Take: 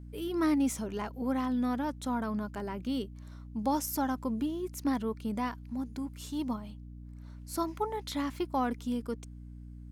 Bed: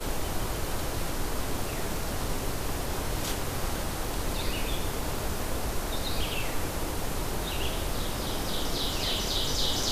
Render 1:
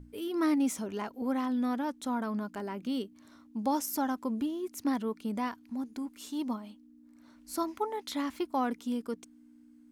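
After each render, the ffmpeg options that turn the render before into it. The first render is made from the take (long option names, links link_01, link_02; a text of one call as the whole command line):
ffmpeg -i in.wav -af "bandreject=frequency=60:width_type=h:width=6,bandreject=frequency=120:width_type=h:width=6,bandreject=frequency=180:width_type=h:width=6" out.wav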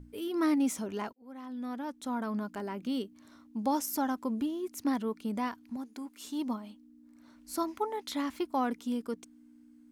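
ffmpeg -i in.wav -filter_complex "[0:a]asettb=1/sr,asplit=3[link_01][link_02][link_03];[link_01]atrim=end=5.764[link_04];[link_02]atrim=start=5.76:end=6.25,asetpts=PTS-STARTPTS,afade=type=in:duration=0.004:curve=qsin,afade=type=out:start_time=0.486:duration=0.004:curve=qsin,equalizer=frequency=73:width_type=o:width=2.8:gain=-13.5[link_05];[link_03]atrim=start=6.246[link_06];[link_04][link_05]acrossfade=duration=0.004:curve1=hsin:curve2=qsin[link_07];[link_07][link_06]acrossfade=duration=0.004:curve1=qsin:curve2=hsin,asplit=2[link_08][link_09];[link_08]atrim=end=1.13,asetpts=PTS-STARTPTS,afade=type=out:start_time=1.126:duration=0.004:curve=hsin[link_10];[link_09]atrim=start=1.13,asetpts=PTS-STARTPTS,afade=type=in:duration=1.23[link_11];[link_10][link_11]concat=n=2:v=0:a=1" out.wav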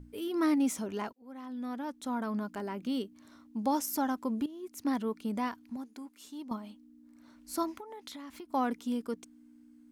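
ffmpeg -i in.wav -filter_complex "[0:a]asettb=1/sr,asplit=3[link_01][link_02][link_03];[link_01]atrim=end=7.784[link_04];[link_02]atrim=start=7.78:end=8.51,asetpts=PTS-STARTPTS,afade=type=in:duration=0.004:curve=qsin,afade=type=out:start_time=0.726:duration=0.004:curve=qsin,acompressor=threshold=-41dB:ratio=20:attack=3.2:release=140:knee=1:detection=peak[link_05];[link_03]atrim=start=8.506[link_06];[link_04][link_05]acrossfade=duration=0.004:curve1=hsin:curve2=qsin[link_07];[link_07][link_06]acrossfade=duration=0.004:curve1=qsin:curve2=hsin,asplit=3[link_08][link_09][link_10];[link_08]atrim=end=4.46,asetpts=PTS-STARTPTS,afade=type=out:start_time=4.456:duration=0.004:curve=hsin:silence=0.211349[link_11];[link_09]atrim=start=4.46:end=6.51,asetpts=PTS-STARTPTS,afade=type=in:duration=0.51:silence=0.211349,afade=type=out:start_time=1.12:duration=0.93:silence=0.281838[link_12];[link_10]atrim=start=6.51,asetpts=PTS-STARTPTS,afade=type=in:duration=0.004:curve=hsin:silence=0.281838[link_13];[link_11][link_12][link_13]concat=n=3:v=0:a=1" out.wav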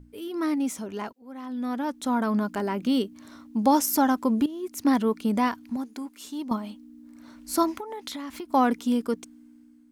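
ffmpeg -i in.wav -af "dynaudnorm=framelen=910:gausssize=3:maxgain=9.5dB" out.wav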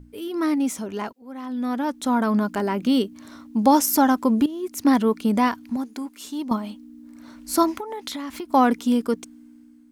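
ffmpeg -i in.wav -af "volume=4dB" out.wav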